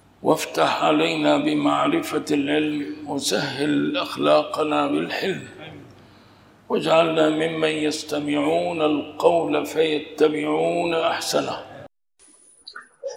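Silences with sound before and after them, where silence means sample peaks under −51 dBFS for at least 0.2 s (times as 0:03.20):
0:11.86–0:12.20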